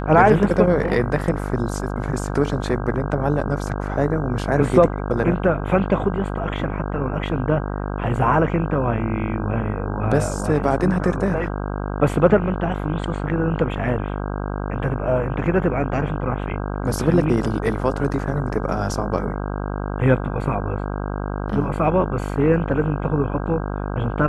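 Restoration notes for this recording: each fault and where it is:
buzz 50 Hz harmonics 32 -26 dBFS

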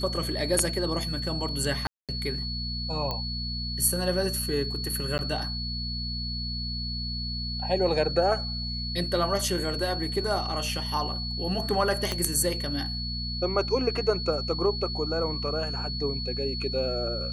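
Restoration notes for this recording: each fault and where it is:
hum 60 Hz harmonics 4 -34 dBFS
whine 4.4 kHz -33 dBFS
1.87–2.09 s: dropout 217 ms
3.11 s: pop -17 dBFS
5.18–5.19 s: dropout 9.9 ms
12.12 s: pop -14 dBFS

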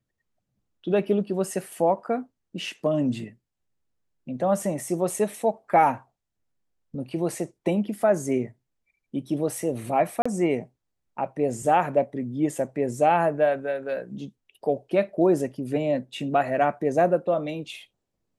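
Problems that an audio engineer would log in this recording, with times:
10.22–10.26 s: dropout 35 ms

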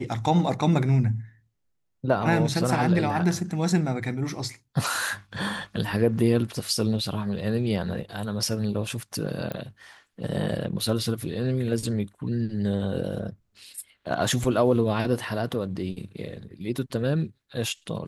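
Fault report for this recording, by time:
9.52 s: pop -18 dBFS

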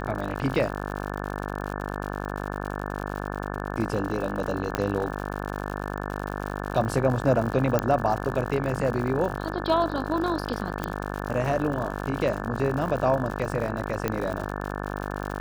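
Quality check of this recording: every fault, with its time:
buzz 50 Hz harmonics 35 -32 dBFS
crackle 89 per s -31 dBFS
4.75 s: pop -10 dBFS
7.79 s: pop -9 dBFS
10.84 s: pop -14 dBFS
14.08 s: pop -11 dBFS

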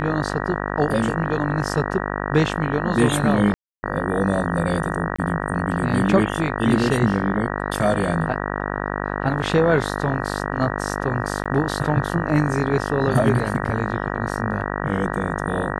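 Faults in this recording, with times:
buzz 50 Hz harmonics 38 -26 dBFS
3.54–3.83 s: dropout 290 ms
5.16–5.18 s: dropout 25 ms
11.44–11.46 s: dropout 16 ms

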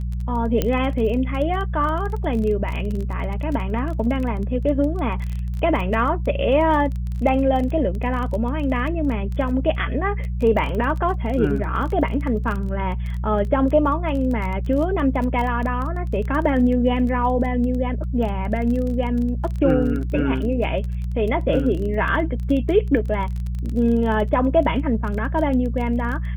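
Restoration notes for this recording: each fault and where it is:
crackle 20 per s -27 dBFS
hum 60 Hz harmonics 3 -25 dBFS
0.62 s: pop -7 dBFS

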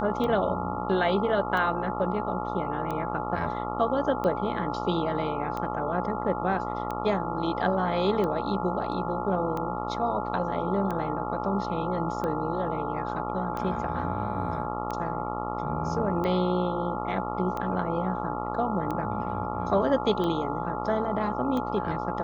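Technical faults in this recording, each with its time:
buzz 60 Hz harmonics 23 -33 dBFS
tick 45 rpm -20 dBFS
whine 850 Hz -34 dBFS

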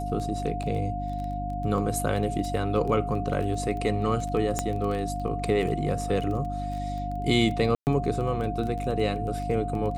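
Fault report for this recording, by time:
crackle 15 per s -32 dBFS
hum 50 Hz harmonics 6 -33 dBFS
whine 710 Hz -32 dBFS
0.63–0.64 s: dropout 5.6 ms
4.59 s: pop -11 dBFS
7.75–7.87 s: dropout 119 ms

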